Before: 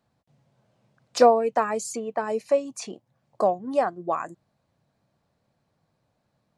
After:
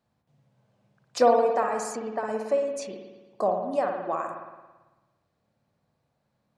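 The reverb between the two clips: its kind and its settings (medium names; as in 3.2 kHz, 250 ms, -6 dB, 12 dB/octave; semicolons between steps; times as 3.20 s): spring tank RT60 1.2 s, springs 55 ms, chirp 60 ms, DRR 2.5 dB; trim -4 dB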